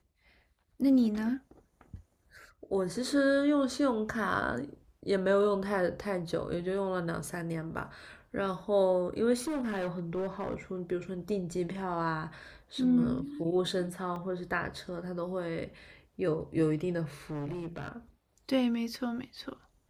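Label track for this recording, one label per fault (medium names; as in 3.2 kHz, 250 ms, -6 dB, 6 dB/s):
9.380000	10.550000	clipped -29.5 dBFS
14.160000	14.160000	dropout 2.1 ms
17.300000	17.880000	clipped -34 dBFS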